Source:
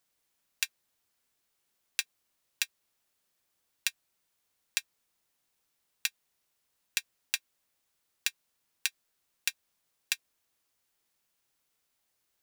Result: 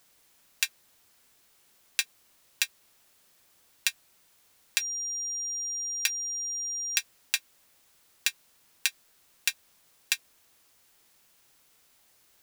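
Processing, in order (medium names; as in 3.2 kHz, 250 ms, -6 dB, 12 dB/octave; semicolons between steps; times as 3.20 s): 4.78–6.99 s: whistle 5.7 kHz -45 dBFS; loudness maximiser +15.5 dB; trim -1 dB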